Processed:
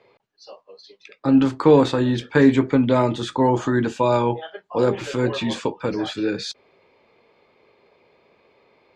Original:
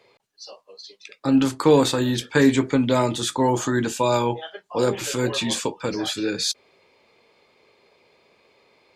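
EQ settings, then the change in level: LPF 2100 Hz 6 dB/oct; air absorption 54 m; +2.5 dB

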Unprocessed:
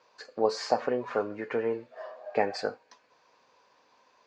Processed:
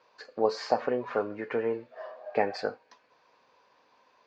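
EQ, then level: LPF 4900 Hz 12 dB/oct; 0.0 dB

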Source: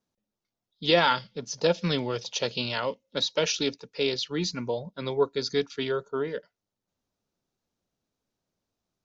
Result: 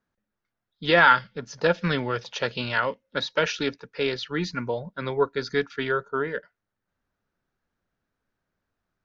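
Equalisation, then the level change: LPF 2500 Hz 6 dB/oct; low shelf 83 Hz +9 dB; bell 1600 Hz +13 dB 1 oct; 0.0 dB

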